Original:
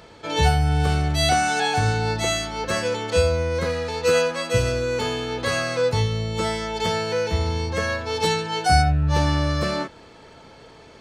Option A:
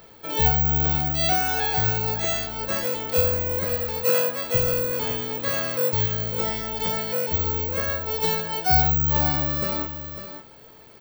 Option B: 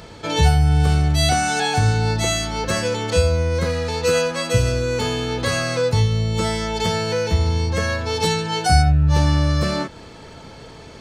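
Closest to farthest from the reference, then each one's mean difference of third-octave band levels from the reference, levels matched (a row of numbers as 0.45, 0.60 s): B, A; 2.0, 4.0 dB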